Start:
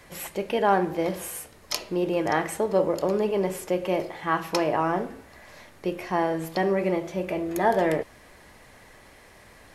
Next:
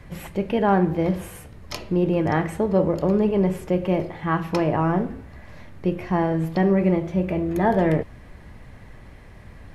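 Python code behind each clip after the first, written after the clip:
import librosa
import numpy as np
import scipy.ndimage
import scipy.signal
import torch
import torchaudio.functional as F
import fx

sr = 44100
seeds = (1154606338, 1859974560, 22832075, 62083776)

y = fx.bass_treble(x, sr, bass_db=15, treble_db=-9)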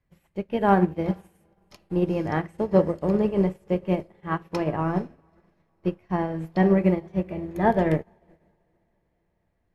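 y = fx.echo_diffused(x, sr, ms=455, feedback_pct=60, wet_db=-16)
y = fx.upward_expand(y, sr, threshold_db=-38.0, expansion=2.5)
y = y * librosa.db_to_amplitude(2.5)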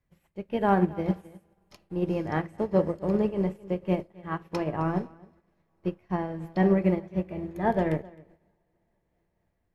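y = x + 10.0 ** (-22.0 / 20.0) * np.pad(x, (int(262 * sr / 1000.0), 0))[:len(x)]
y = fx.am_noise(y, sr, seeds[0], hz=5.7, depth_pct=65)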